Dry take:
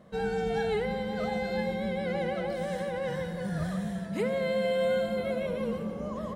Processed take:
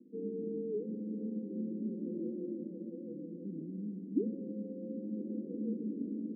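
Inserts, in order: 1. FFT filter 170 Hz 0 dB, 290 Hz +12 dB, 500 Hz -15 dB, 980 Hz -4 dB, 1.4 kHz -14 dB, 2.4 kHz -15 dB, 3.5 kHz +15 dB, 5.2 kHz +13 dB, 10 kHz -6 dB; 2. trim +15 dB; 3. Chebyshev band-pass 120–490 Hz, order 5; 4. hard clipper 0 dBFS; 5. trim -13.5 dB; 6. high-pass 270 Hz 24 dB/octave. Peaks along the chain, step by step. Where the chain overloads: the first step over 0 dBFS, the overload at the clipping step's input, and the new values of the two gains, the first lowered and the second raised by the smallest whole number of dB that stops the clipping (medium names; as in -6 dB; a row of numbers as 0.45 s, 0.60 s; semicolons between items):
-16.5 dBFS, -1.5 dBFS, -2.5 dBFS, -2.5 dBFS, -16.0 dBFS, -19.5 dBFS; nothing clips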